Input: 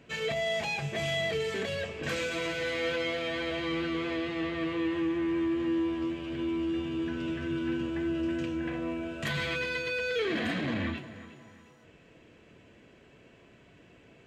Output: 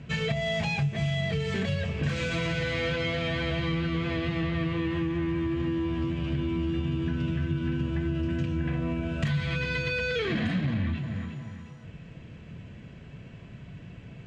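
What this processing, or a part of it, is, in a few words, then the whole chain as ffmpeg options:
jukebox: -af "lowpass=6800,lowshelf=f=230:t=q:w=1.5:g=11.5,acompressor=threshold=0.0316:ratio=6,volume=1.78"

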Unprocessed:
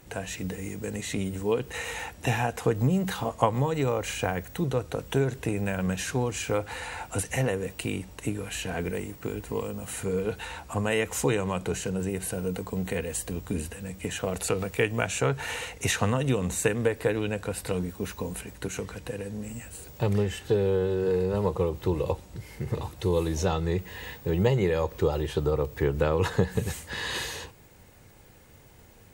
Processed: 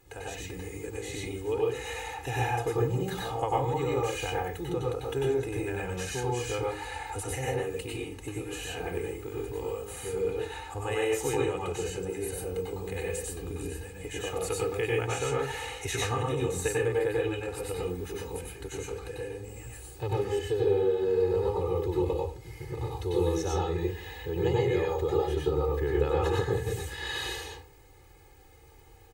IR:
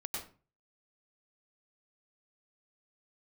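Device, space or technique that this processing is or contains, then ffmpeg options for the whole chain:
microphone above a desk: -filter_complex "[0:a]aecho=1:1:2.4:0.9[s0];[1:a]atrim=start_sample=2205[s1];[s0][s1]afir=irnorm=-1:irlink=0,volume=0.501"

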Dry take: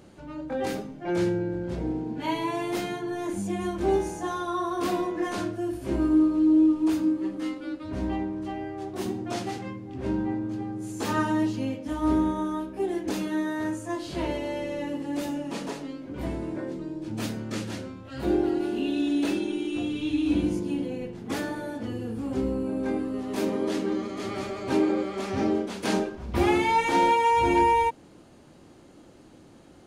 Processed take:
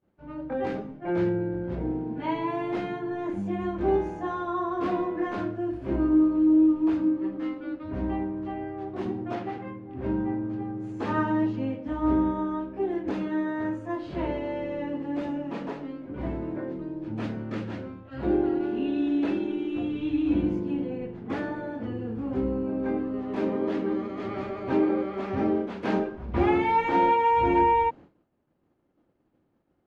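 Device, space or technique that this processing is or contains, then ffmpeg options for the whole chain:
hearing-loss simulation: -filter_complex "[0:a]lowpass=2100,agate=range=0.0224:threshold=0.0112:ratio=3:detection=peak,asettb=1/sr,asplit=3[s0][s1][s2];[s0]atrim=end=9.354[s3];[s1]atrim=start=9.35:end=9.97,asetpts=PTS-STARTPTS,afade=t=in:d=0.004:c=qsin,afade=t=out:st=0.616:d=0.004:c=qsin,bass=f=250:g=-4,treble=f=4000:g=-7[s4];[s2]atrim=start=9.966[s5];[s3][s4]acrossfade=d=0.004:c1=hsin:c2=qsin[s6];[s6][s5]acrossfade=d=0.004:c1=qsin:c2=hsin"

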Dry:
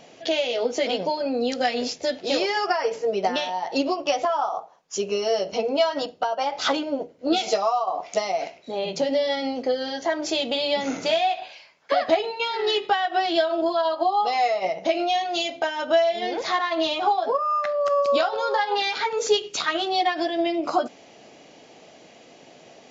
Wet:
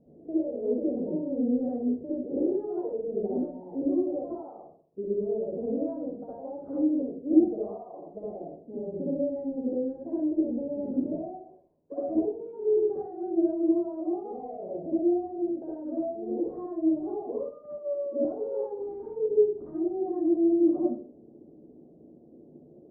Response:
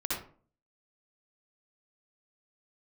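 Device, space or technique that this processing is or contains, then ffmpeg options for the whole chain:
next room: -filter_complex "[0:a]lowpass=f=410:w=0.5412,lowpass=f=410:w=1.3066[s0];[1:a]atrim=start_sample=2205[s1];[s0][s1]afir=irnorm=-1:irlink=0,asettb=1/sr,asplit=3[s2][s3][s4];[s2]atrim=end=17.784[s5];[s3]atrim=start=17.78:end=18.25,asetpts=PTS-STARTPTS,afade=t=in:d=0.004:c=qsin,afade=t=out:st=0.466:d=0.004:c=qsin,highpass=f=230:w=0.5412,highpass=f=230:w=1.3066[s6];[s4]atrim=start=18.246[s7];[s5][s6]acrossfade=d=0.004:c1=hsin:c2=qsin[s8];[s8][s7]acrossfade=d=0.004:c1=qsin:c2=hsin,volume=0.631"

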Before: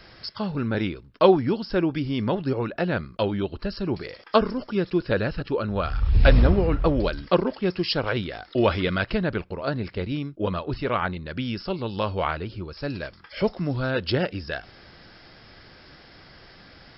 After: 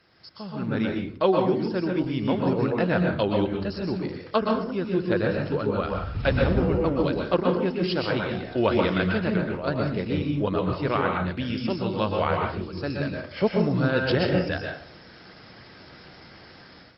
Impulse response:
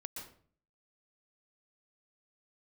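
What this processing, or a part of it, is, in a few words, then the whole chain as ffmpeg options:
far-field microphone of a smart speaker: -filter_complex "[0:a]asplit=3[s0][s1][s2];[s0]afade=t=out:st=7.22:d=0.02[s3];[s1]lowpass=5000,afade=t=in:st=7.22:d=0.02,afade=t=out:st=7.92:d=0.02[s4];[s2]afade=t=in:st=7.92:d=0.02[s5];[s3][s4][s5]amix=inputs=3:normalize=0[s6];[1:a]atrim=start_sample=2205[s7];[s6][s7]afir=irnorm=-1:irlink=0,highpass=92,dynaudnorm=f=410:g=3:m=4.47,volume=0.473" -ar 48000 -c:a libopus -b:a 24k

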